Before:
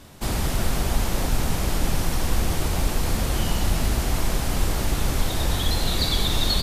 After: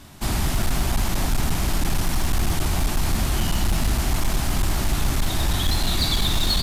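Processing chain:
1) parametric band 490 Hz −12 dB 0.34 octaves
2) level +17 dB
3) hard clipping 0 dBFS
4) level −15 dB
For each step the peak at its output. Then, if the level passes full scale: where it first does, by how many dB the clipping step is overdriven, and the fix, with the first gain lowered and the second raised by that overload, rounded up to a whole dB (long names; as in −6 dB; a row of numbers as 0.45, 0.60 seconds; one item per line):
−8.0, +9.0, 0.0, −15.0 dBFS
step 2, 9.0 dB
step 2 +8 dB, step 4 −6 dB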